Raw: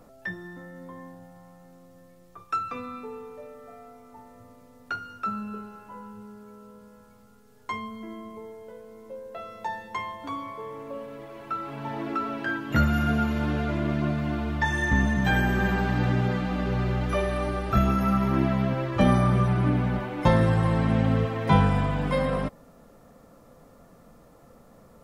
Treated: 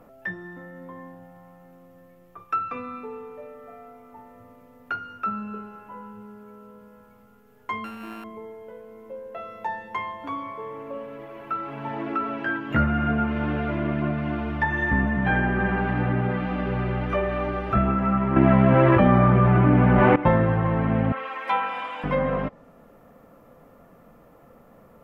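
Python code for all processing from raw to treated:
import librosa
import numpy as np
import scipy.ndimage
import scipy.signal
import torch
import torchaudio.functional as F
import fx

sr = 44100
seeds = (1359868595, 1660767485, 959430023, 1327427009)

y = fx.chain(x, sr, fx.sample_sort(block=32),
    fx.peak_eq(hz=6500.0, db=-7.5, octaves=0.29), at=(7.84, 8.24))
y = fx.chain(y, sr, fx.law_mismatch(coded='A'),
    fx.env_flatten(amount_pct=100), at=(18.36, 20.16))
y = fx.chain(y, sr, fx.highpass(hz=900.0, slope=12),
    fx.comb(ms=3.7, depth=0.68), at=(21.12, 22.04))
y = fx.low_shelf(y, sr, hz=140.0, db=-5.5)
y = fx.env_lowpass_down(y, sr, base_hz=2300.0, full_db=-21.5)
y = fx.band_shelf(y, sr, hz=6100.0, db=-11.0, octaves=1.7)
y = F.gain(torch.from_numpy(y), 2.5).numpy()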